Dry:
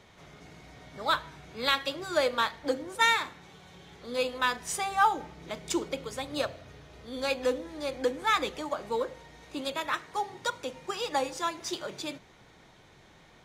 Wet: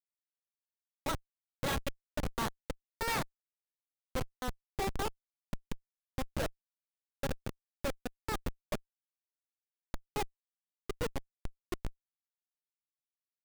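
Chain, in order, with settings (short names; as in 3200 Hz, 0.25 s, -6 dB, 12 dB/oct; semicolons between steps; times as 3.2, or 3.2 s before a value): low-pass opened by the level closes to 510 Hz, open at -26 dBFS; chopper 1.3 Hz, depth 65%, duty 45%; Schmitt trigger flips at -28 dBFS; gain +4.5 dB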